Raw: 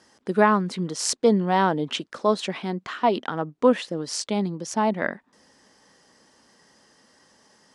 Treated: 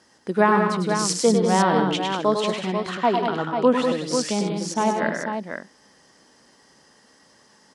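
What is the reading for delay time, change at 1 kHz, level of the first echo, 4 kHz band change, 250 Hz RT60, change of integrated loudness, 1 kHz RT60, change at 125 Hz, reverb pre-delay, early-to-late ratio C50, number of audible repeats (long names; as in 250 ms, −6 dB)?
101 ms, +2.5 dB, −6.0 dB, +2.5 dB, no reverb audible, +2.0 dB, no reverb audible, +2.5 dB, no reverb audible, no reverb audible, 5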